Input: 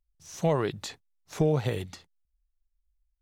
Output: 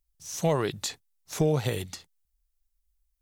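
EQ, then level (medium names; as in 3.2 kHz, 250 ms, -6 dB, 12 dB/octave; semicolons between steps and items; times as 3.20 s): treble shelf 4.5 kHz +11.5 dB; 0.0 dB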